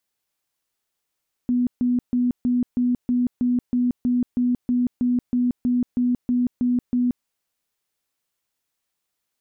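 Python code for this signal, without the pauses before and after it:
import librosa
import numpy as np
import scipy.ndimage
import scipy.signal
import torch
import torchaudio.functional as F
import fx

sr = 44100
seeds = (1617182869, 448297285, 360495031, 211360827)

y = fx.tone_burst(sr, hz=246.0, cycles=44, every_s=0.32, bursts=18, level_db=-17.0)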